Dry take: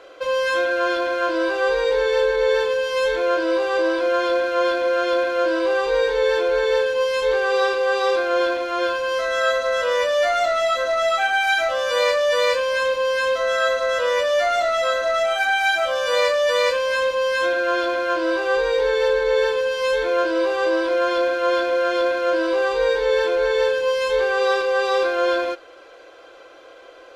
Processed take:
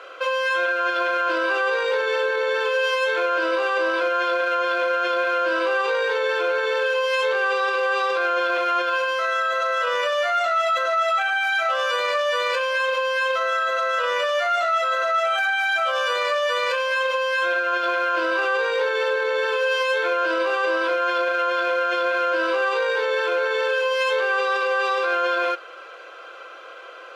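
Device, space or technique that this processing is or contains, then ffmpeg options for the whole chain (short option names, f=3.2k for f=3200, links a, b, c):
laptop speaker: -af "highpass=240,highpass=f=340:w=0.5412,highpass=f=340:w=1.3066,equalizer=f=1.3k:t=o:w=0.58:g=12,equalizer=f=2.7k:t=o:w=0.53:g=7.5,alimiter=limit=-15dB:level=0:latency=1:release=12"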